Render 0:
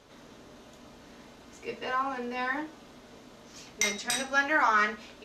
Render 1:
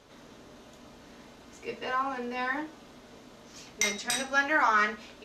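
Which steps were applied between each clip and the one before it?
no audible change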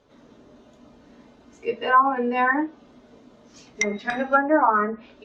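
low-pass that closes with the level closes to 790 Hz, closed at -23.5 dBFS; spectral contrast expander 1.5:1; trim +7.5 dB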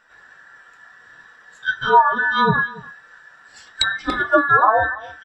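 every band turned upside down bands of 2 kHz; delay 285 ms -20 dB; trim +4 dB

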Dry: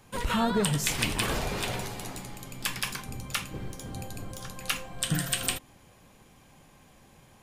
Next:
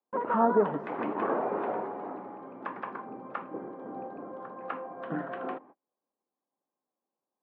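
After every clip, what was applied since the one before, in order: high-pass 270 Hz 24 dB/octave; gate -50 dBFS, range -35 dB; low-pass 1.2 kHz 24 dB/octave; trim +5.5 dB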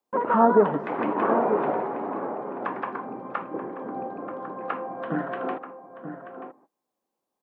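echo from a far wall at 160 m, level -9 dB; trim +6 dB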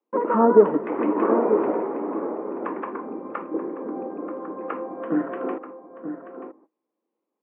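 cabinet simulation 220–2500 Hz, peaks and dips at 220 Hz +4 dB, 320 Hz +9 dB, 460 Hz +5 dB, 750 Hz -6 dB, 1.6 kHz -5 dB

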